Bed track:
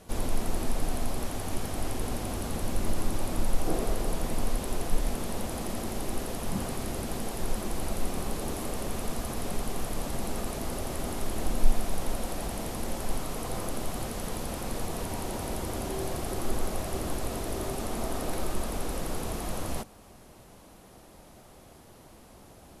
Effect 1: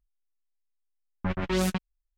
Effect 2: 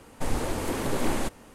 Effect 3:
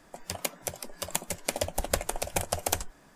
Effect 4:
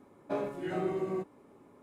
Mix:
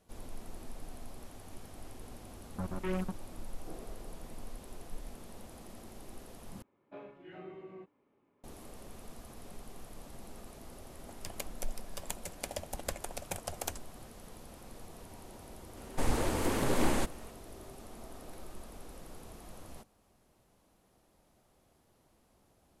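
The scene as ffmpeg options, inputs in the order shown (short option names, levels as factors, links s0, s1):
-filter_complex "[0:a]volume=0.15[s0];[1:a]afwtdn=0.0178[s1];[4:a]lowpass=f=2900:t=q:w=2[s2];[s0]asplit=2[s3][s4];[s3]atrim=end=6.624[s5];[s2]atrim=end=1.82,asetpts=PTS-STARTPTS,volume=0.168[s6];[s4]atrim=start=8.436[s7];[s1]atrim=end=2.17,asetpts=PTS-STARTPTS,volume=0.376,afade=t=in:d=0.004:c=hsin,afade=t=out:st=2.166:d=0.004:c=hsin,adelay=1340[s8];[3:a]atrim=end=3.15,asetpts=PTS-STARTPTS,volume=0.316,afade=t=in:d=0.004:c=hsin,afade=t=out:st=3.146:d=0.004:c=hsin,adelay=10950[s9];[2:a]atrim=end=1.54,asetpts=PTS-STARTPTS,volume=0.794,afade=t=in:d=0.004:c=hsin,afade=t=out:st=1.536:d=0.004:c=hsin,adelay=15770[s10];[s5][s6]acrossfade=d=0.004:c1=hsin:c2=hsin[s11];[s11][s7]acrossfade=d=0.004:c1=hsin:c2=hsin[s12];[s12][s8][s9][s10]amix=inputs=4:normalize=0"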